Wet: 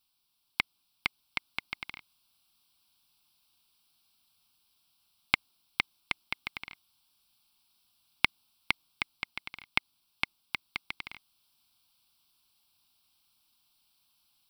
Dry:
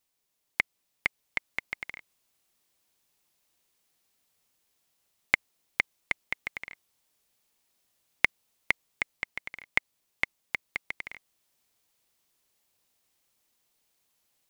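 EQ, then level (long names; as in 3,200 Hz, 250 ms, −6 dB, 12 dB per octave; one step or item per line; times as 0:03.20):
parametric band 5,600 Hz +10.5 dB 1.3 octaves
dynamic equaliser 370 Hz, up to +5 dB, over −52 dBFS, Q 0.74
phaser with its sweep stopped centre 1,900 Hz, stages 6
+2.5 dB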